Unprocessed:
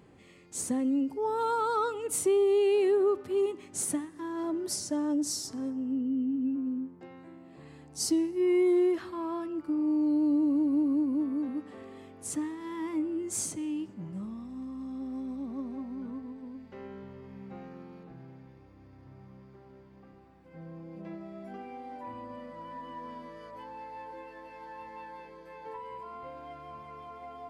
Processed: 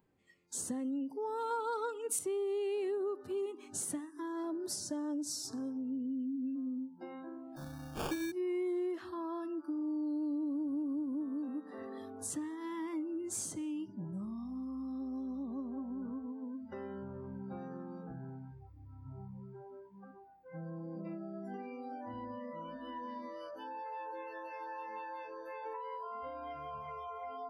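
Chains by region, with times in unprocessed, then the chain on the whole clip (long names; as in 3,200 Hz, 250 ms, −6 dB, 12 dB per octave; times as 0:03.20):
0:01.50–0:02.19: comb filter 4.3 ms, depth 73% + multiband upward and downward expander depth 70%
0:07.56–0:08.32: sample-rate reduction 2,000 Hz + double-tracking delay 42 ms −5 dB
0:21.01–0:23.86: low-pass filter 12,000 Hz + phaser whose notches keep moving one way rising 1.3 Hz
whole clip: noise reduction from a noise print of the clip's start 24 dB; downward compressor 2.5 to 1, threshold −48 dBFS; level +5.5 dB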